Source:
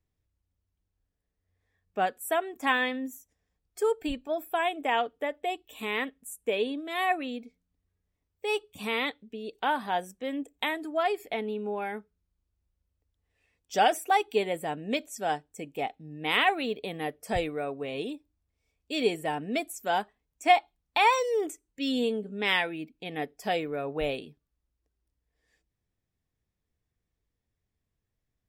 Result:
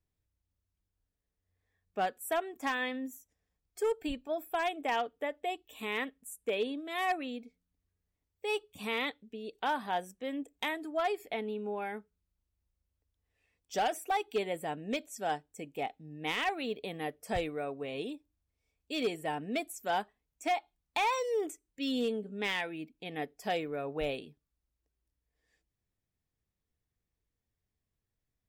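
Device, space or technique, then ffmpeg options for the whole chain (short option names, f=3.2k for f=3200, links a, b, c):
limiter into clipper: -af "alimiter=limit=-16dB:level=0:latency=1:release=248,asoftclip=type=hard:threshold=-20.5dB,volume=-4dB"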